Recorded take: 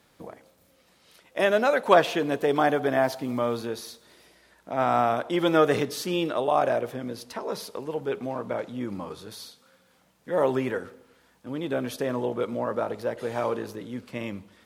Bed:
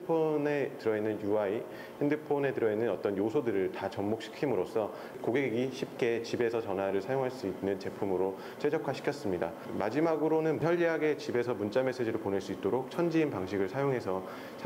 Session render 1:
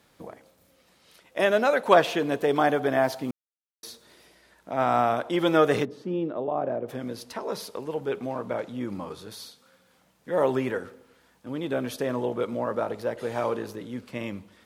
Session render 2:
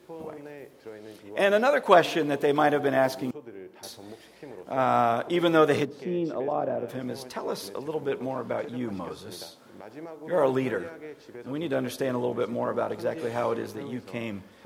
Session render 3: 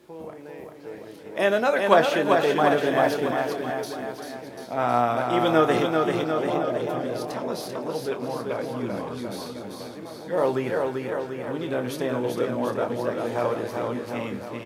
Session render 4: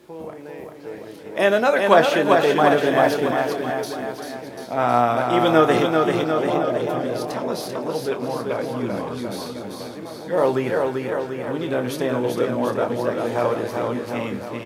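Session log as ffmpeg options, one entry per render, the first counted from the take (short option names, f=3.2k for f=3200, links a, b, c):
-filter_complex "[0:a]asplit=3[a][b][c];[a]afade=t=out:st=5.84:d=0.02[d];[b]bandpass=f=230:t=q:w=0.63,afade=t=in:st=5.84:d=0.02,afade=t=out:st=6.88:d=0.02[e];[c]afade=t=in:st=6.88:d=0.02[f];[d][e][f]amix=inputs=3:normalize=0,asplit=3[g][h][i];[g]atrim=end=3.31,asetpts=PTS-STARTPTS,afade=t=out:st=3.306:d=0.004:c=hsin[j];[h]atrim=start=3.31:end=3.83,asetpts=PTS-STARTPTS,volume=0[k];[i]atrim=start=3.83,asetpts=PTS-STARTPTS,afade=t=in:d=0.004:c=hsin[l];[j][k][l]concat=n=3:v=0:a=1"
-filter_complex "[1:a]volume=-12.5dB[a];[0:a][a]amix=inputs=2:normalize=0"
-filter_complex "[0:a]asplit=2[a][b];[b]adelay=25,volume=-10.5dB[c];[a][c]amix=inputs=2:normalize=0,aecho=1:1:390|741|1057|1341|1597:0.631|0.398|0.251|0.158|0.1"
-af "volume=4dB,alimiter=limit=-1dB:level=0:latency=1"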